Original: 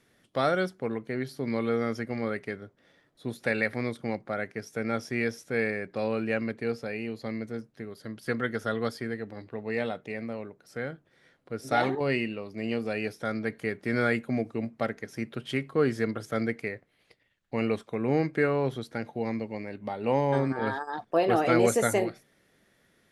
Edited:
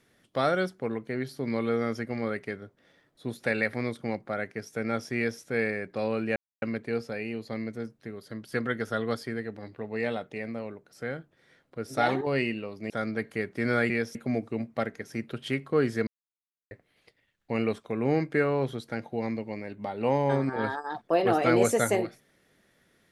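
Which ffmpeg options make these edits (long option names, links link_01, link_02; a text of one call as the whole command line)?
ffmpeg -i in.wav -filter_complex "[0:a]asplit=7[link_01][link_02][link_03][link_04][link_05][link_06][link_07];[link_01]atrim=end=6.36,asetpts=PTS-STARTPTS,afade=type=out:start_time=6.356:duration=0.004:curve=hsin,apad=pad_dur=0.26[link_08];[link_02]atrim=start=6.36:end=12.642,asetpts=PTS-STARTPTS,afade=type=in:duration=0.004:curve=hsin[link_09];[link_03]atrim=start=13.178:end=14.182[link_10];[link_04]atrim=start=5.158:end=5.412[link_11];[link_05]atrim=start=14.178:end=16.1,asetpts=PTS-STARTPTS,afade=type=out:start_time=1.918:duration=0.004:curve=hsin[link_12];[link_06]atrim=start=16.1:end=16.74,asetpts=PTS-STARTPTS,volume=0[link_13];[link_07]atrim=start=16.74,asetpts=PTS-STARTPTS,afade=type=in:duration=0.004:curve=hsin[link_14];[link_08][link_09]concat=n=2:v=0:a=1[link_15];[link_15][link_10]acrossfade=duration=0.004:curve1=hsin:curve2=hsin[link_16];[link_16][link_11]acrossfade=duration=0.004:curve1=hsin:curve2=hsin[link_17];[link_12][link_13][link_14]concat=n=3:v=0:a=1[link_18];[link_17][link_18]acrossfade=duration=0.004:curve1=hsin:curve2=hsin" out.wav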